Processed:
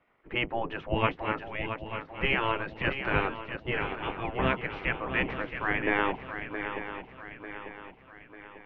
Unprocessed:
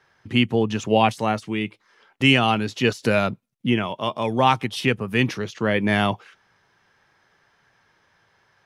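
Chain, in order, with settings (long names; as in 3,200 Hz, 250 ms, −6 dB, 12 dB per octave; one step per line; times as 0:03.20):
sub-octave generator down 1 octave, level −3 dB
gate on every frequency bin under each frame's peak −10 dB weak
low-pass filter 2,200 Hz 24 dB per octave
on a send: feedback echo with a long and a short gap by turns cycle 895 ms, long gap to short 3 to 1, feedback 46%, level −9 dB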